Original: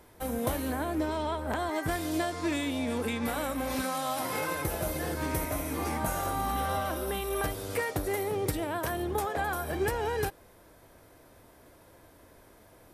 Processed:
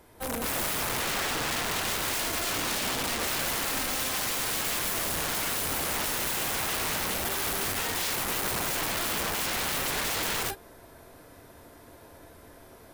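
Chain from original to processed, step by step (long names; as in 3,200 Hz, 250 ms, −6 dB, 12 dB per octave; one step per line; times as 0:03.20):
reverb whose tail is shaped and stops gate 270 ms rising, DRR −4 dB
wrap-around overflow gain 25 dB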